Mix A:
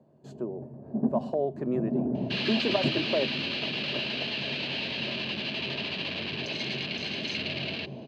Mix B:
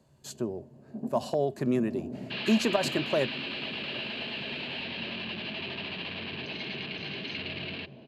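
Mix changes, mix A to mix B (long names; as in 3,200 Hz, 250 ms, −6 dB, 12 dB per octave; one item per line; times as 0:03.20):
speech: remove resonant band-pass 490 Hz, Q 0.7
first sound −9.0 dB
second sound: add high-frequency loss of the air 220 metres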